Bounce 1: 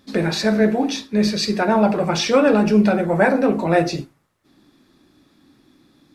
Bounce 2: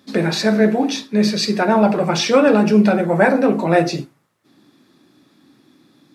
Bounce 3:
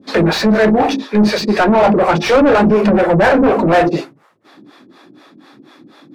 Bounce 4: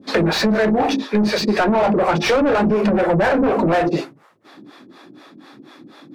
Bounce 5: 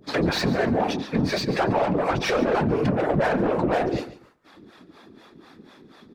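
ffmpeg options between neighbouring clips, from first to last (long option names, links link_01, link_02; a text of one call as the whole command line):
ffmpeg -i in.wav -af "highpass=frequency=110:width=0.5412,highpass=frequency=110:width=1.3066,volume=2dB" out.wav
ffmpeg -i in.wav -filter_complex "[0:a]acrossover=split=410[link_01][link_02];[link_01]aeval=exprs='val(0)*(1-1/2+1/2*cos(2*PI*4.1*n/s))':channel_layout=same[link_03];[link_02]aeval=exprs='val(0)*(1-1/2-1/2*cos(2*PI*4.1*n/s))':channel_layout=same[link_04];[link_03][link_04]amix=inputs=2:normalize=0,acontrast=30,asplit=2[link_05][link_06];[link_06]highpass=frequency=720:poles=1,volume=24dB,asoftclip=type=tanh:threshold=-2.5dB[link_07];[link_05][link_07]amix=inputs=2:normalize=0,lowpass=frequency=1200:poles=1,volume=-6dB" out.wav
ffmpeg -i in.wav -af "acompressor=threshold=-14dB:ratio=6" out.wav
ffmpeg -i in.wav -af "afftfilt=real='hypot(re,im)*cos(2*PI*random(0))':imag='hypot(re,im)*sin(2*PI*random(1))':win_size=512:overlap=0.75,aecho=1:1:141|282:0.158|0.0396" out.wav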